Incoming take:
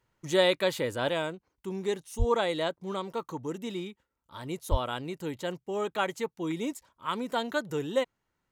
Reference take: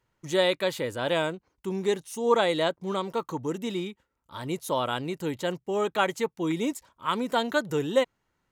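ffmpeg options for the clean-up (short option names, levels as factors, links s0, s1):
-filter_complex "[0:a]asplit=3[s0][s1][s2];[s0]afade=t=out:st=2.18:d=0.02[s3];[s1]highpass=f=140:w=0.5412,highpass=f=140:w=1.3066,afade=t=in:st=2.18:d=0.02,afade=t=out:st=2.3:d=0.02[s4];[s2]afade=t=in:st=2.3:d=0.02[s5];[s3][s4][s5]amix=inputs=3:normalize=0,asplit=3[s6][s7][s8];[s6]afade=t=out:st=4.7:d=0.02[s9];[s7]highpass=f=140:w=0.5412,highpass=f=140:w=1.3066,afade=t=in:st=4.7:d=0.02,afade=t=out:st=4.82:d=0.02[s10];[s8]afade=t=in:st=4.82:d=0.02[s11];[s9][s10][s11]amix=inputs=3:normalize=0,asetnsamples=n=441:p=0,asendcmd='1.09 volume volume 4.5dB',volume=1"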